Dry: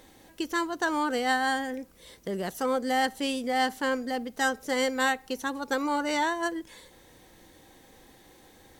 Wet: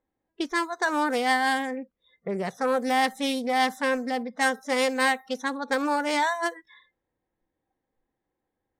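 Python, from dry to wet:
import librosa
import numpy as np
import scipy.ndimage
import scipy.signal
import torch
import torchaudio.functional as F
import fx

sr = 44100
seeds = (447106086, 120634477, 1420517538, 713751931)

y = fx.env_lowpass(x, sr, base_hz=1500.0, full_db=-24.5)
y = fx.noise_reduce_blind(y, sr, reduce_db=29)
y = fx.doppler_dist(y, sr, depth_ms=0.14)
y = y * 10.0 ** (3.0 / 20.0)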